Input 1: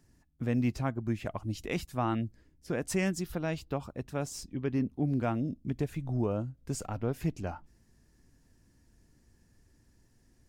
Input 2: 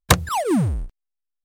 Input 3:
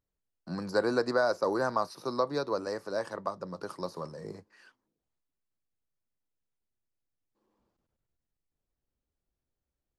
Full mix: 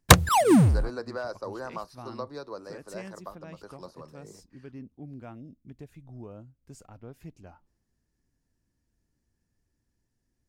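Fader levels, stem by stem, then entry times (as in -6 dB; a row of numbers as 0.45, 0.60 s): -13.0, +1.5, -8.0 dB; 0.00, 0.00, 0.00 s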